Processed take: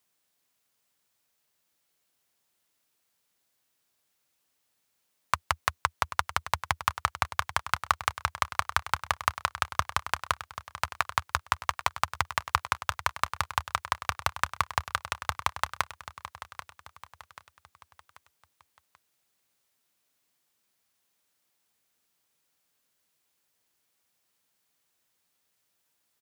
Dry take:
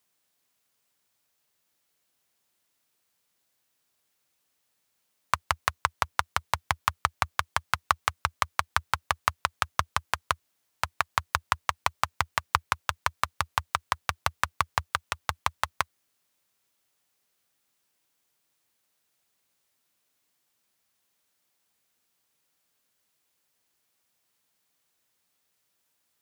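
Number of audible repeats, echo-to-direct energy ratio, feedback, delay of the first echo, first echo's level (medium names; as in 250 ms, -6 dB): 4, -12.0 dB, 44%, 786 ms, -13.0 dB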